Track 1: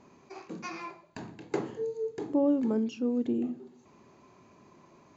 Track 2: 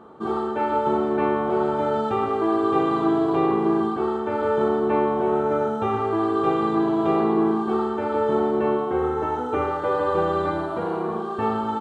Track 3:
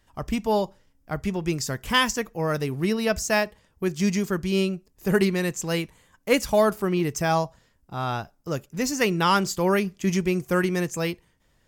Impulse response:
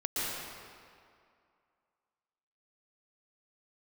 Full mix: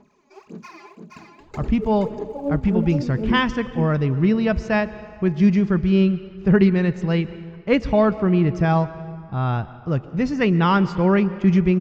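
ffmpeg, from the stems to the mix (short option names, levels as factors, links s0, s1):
-filter_complex "[0:a]aecho=1:1:4.8:0.54,aphaser=in_gain=1:out_gain=1:delay=3.6:decay=0.74:speed=1.8:type=sinusoidal,volume=0.447,asplit=2[s0][s1];[s1]volume=0.631[s2];[2:a]lowpass=f=5300:w=0.5412,lowpass=f=5300:w=1.3066,bass=f=250:g=10,treble=f=4000:g=-14,adelay=1400,volume=1.06,asplit=2[s3][s4];[s4]volume=0.0891[s5];[3:a]atrim=start_sample=2205[s6];[s5][s6]afir=irnorm=-1:irlink=0[s7];[s2]aecho=0:1:473:1[s8];[s0][s3][s7][s8]amix=inputs=4:normalize=0"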